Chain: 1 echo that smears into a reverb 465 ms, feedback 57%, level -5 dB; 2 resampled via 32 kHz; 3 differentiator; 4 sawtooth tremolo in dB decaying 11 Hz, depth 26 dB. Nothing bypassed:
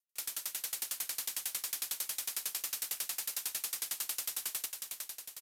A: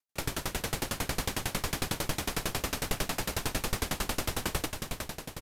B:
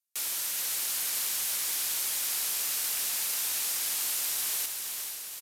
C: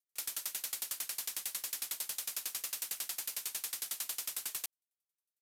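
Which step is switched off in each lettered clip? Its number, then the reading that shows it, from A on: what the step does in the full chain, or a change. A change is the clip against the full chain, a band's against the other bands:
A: 3, 250 Hz band +18.0 dB; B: 4, crest factor change -7.0 dB; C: 1, momentary loudness spread change -3 LU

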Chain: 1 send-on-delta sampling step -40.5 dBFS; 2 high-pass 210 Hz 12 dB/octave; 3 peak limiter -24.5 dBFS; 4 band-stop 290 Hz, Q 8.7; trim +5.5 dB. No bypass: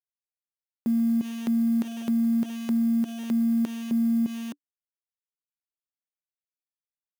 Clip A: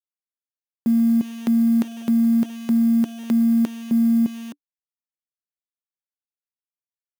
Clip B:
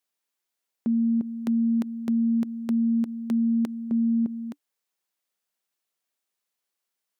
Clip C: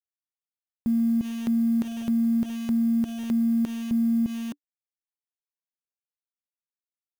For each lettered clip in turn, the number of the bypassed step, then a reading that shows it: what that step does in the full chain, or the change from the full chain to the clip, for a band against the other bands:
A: 3, mean gain reduction 3.5 dB; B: 1, distortion -24 dB; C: 2, momentary loudness spread change +2 LU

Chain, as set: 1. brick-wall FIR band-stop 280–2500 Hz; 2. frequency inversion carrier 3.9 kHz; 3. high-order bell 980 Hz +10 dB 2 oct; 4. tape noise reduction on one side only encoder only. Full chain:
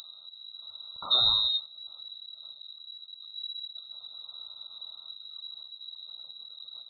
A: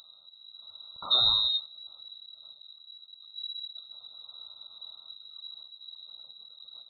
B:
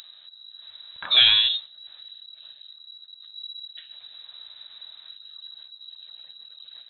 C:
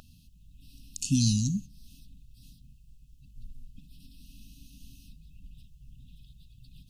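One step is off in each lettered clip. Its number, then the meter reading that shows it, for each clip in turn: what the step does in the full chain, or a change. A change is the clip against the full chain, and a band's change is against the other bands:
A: 4, momentary loudness spread change +3 LU; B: 1, crest factor change +3.0 dB; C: 2, crest factor change +2.5 dB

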